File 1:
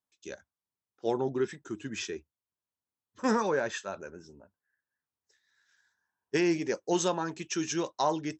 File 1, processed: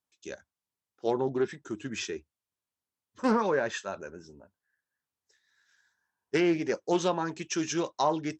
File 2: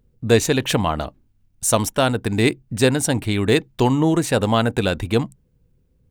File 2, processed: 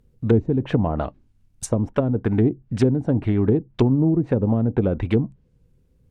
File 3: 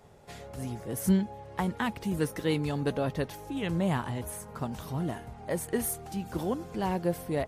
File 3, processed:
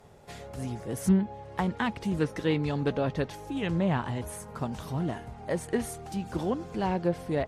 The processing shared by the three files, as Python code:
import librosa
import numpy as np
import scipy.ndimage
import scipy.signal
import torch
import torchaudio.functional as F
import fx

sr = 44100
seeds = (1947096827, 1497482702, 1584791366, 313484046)

y = fx.env_lowpass_down(x, sr, base_hz=320.0, full_db=-14.0)
y = fx.doppler_dist(y, sr, depth_ms=0.16)
y = y * librosa.db_to_amplitude(1.5)